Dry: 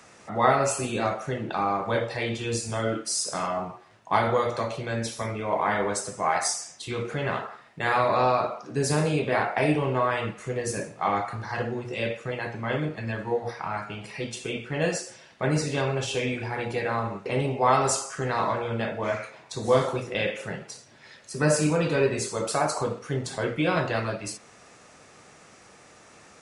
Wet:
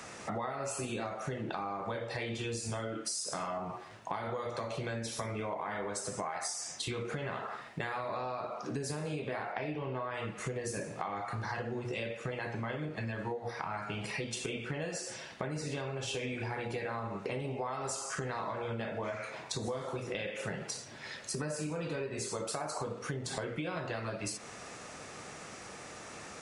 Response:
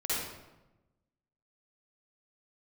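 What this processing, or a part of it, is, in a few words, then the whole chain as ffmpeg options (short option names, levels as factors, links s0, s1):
serial compression, peaks first: -filter_complex "[0:a]acompressor=threshold=0.02:ratio=6,acompressor=threshold=0.00891:ratio=2.5,asettb=1/sr,asplit=3[s0][s1][s2];[s0]atrim=end=9.524[s3];[s1]atrim=start=9.52:end=10.14,asetpts=PTS-STARTPTS,afade=t=in:d=0.004:c=qsin,afade=t=out:st=0.616:d=0.004:c=qsin,lowpass=f=5600:w=0.5412,lowpass=f=5600:w=1.3066[s4];[s2]atrim=start=10.136[s5];[s3][s4]acrossfade=d=0.004:c1=hsin:c2=qsin[s6];[s6][s5]acrossfade=d=0.004:c1=qsin:c2=hsin,volume=1.78"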